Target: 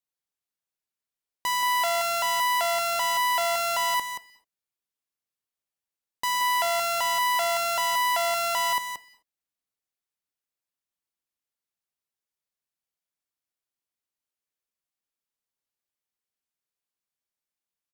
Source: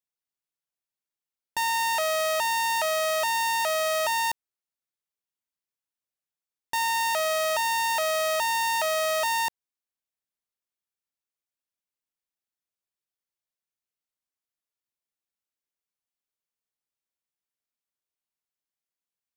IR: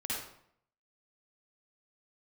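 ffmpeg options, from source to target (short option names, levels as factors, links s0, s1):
-filter_complex "[0:a]asetrate=47628,aresample=44100,aecho=1:1:178:0.398,asplit=2[s0][s1];[1:a]atrim=start_sample=2205,afade=t=out:st=0.19:d=0.01,atrim=end_sample=8820,adelay=125[s2];[s1][s2]afir=irnorm=-1:irlink=0,volume=0.0668[s3];[s0][s3]amix=inputs=2:normalize=0"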